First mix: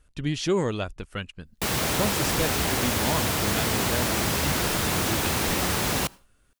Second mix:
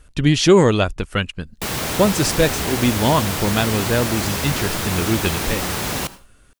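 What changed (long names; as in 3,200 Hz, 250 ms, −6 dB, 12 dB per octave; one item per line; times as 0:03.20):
speech +12.0 dB
background: send +10.5 dB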